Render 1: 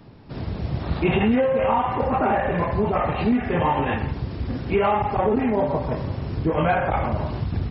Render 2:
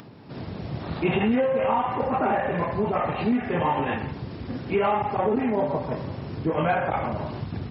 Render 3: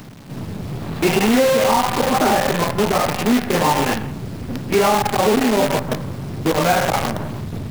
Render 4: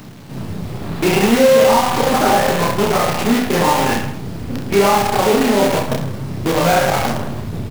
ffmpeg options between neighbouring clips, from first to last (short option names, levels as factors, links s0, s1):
-af "highpass=120,acompressor=mode=upward:threshold=0.0141:ratio=2.5,volume=0.75"
-filter_complex "[0:a]equalizer=f=190:w=0.86:g=4,acrossover=split=240[s0][s1];[s0]asoftclip=type=hard:threshold=0.0266[s2];[s1]acrusher=bits=5:dc=4:mix=0:aa=0.000001[s3];[s2][s3]amix=inputs=2:normalize=0,volume=2"
-af "aecho=1:1:30|66|109.2|161|223.2:0.631|0.398|0.251|0.158|0.1"